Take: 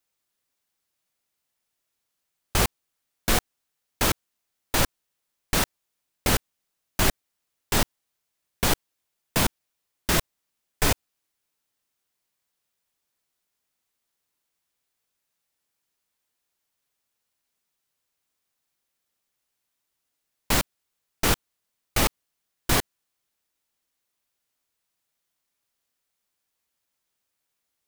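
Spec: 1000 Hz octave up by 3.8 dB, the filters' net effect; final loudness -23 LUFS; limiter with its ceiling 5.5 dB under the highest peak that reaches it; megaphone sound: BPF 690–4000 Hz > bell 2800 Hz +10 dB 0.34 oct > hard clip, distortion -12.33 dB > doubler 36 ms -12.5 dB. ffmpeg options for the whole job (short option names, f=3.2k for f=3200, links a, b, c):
-filter_complex "[0:a]equalizer=f=1k:t=o:g=6,alimiter=limit=-10.5dB:level=0:latency=1,highpass=690,lowpass=4k,equalizer=f=2.8k:t=o:w=0.34:g=10,asoftclip=type=hard:threshold=-21dB,asplit=2[a][b];[b]adelay=36,volume=-12.5dB[c];[a][c]amix=inputs=2:normalize=0,volume=6.5dB"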